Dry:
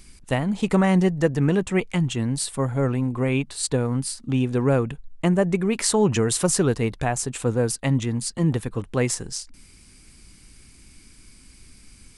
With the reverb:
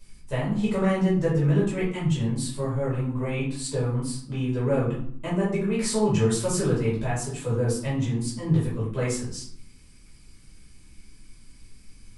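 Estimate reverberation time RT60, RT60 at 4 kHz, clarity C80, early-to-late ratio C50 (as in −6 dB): 0.60 s, 0.40 s, 8.0 dB, 3.5 dB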